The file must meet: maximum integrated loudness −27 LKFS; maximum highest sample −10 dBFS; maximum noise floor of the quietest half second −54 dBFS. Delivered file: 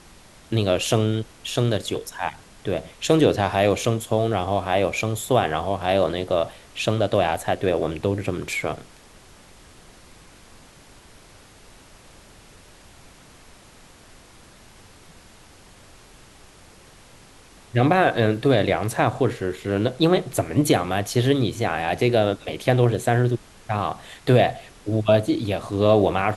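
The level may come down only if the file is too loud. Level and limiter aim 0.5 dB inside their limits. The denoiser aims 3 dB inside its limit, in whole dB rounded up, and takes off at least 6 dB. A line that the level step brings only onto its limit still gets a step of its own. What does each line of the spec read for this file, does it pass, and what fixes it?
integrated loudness −22.0 LKFS: out of spec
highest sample −4.5 dBFS: out of spec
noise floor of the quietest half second −49 dBFS: out of spec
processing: level −5.5 dB
brickwall limiter −10.5 dBFS

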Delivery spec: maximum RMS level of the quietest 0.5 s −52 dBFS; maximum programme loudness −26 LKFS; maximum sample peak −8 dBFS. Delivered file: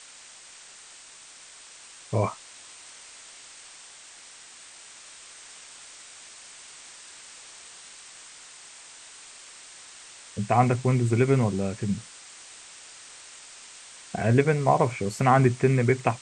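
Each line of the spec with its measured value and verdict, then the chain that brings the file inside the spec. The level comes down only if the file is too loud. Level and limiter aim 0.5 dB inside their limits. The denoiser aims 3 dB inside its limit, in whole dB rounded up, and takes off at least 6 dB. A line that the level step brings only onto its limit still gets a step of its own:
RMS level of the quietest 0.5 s −48 dBFS: out of spec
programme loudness −24.0 LKFS: out of spec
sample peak −6.0 dBFS: out of spec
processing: broadband denoise 6 dB, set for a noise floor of −48 dBFS
level −2.5 dB

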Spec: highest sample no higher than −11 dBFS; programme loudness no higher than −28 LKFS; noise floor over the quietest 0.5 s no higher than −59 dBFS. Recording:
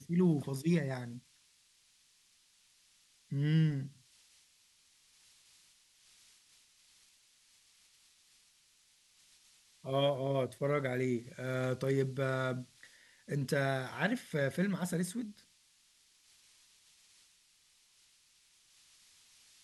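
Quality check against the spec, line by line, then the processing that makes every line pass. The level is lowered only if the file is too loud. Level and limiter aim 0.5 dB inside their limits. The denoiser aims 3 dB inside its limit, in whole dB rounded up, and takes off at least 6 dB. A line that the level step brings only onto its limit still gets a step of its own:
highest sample −18.5 dBFS: in spec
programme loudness −34.5 LKFS: in spec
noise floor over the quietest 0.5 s −69 dBFS: in spec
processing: no processing needed

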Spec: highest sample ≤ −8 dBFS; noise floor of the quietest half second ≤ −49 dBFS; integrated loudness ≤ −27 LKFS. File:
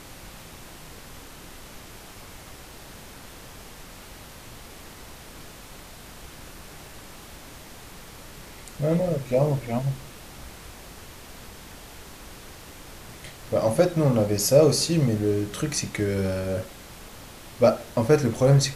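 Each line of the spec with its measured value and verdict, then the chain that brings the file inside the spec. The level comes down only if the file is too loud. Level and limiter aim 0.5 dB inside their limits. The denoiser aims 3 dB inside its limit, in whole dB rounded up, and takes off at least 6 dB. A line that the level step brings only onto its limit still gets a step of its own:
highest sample −5.5 dBFS: out of spec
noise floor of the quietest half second −44 dBFS: out of spec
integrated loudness −23.0 LKFS: out of spec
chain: broadband denoise 6 dB, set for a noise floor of −44 dBFS
level −4.5 dB

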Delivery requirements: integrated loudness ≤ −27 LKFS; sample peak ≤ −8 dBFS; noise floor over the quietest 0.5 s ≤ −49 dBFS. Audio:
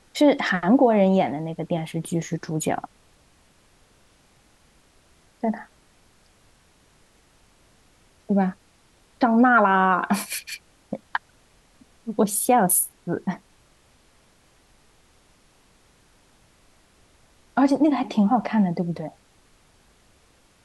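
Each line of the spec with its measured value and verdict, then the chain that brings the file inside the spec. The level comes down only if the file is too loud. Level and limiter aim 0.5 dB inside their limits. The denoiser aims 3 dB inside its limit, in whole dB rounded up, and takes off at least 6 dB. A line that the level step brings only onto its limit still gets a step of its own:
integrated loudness −22.0 LKFS: out of spec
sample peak −6.5 dBFS: out of spec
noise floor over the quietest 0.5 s −59 dBFS: in spec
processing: level −5.5 dB

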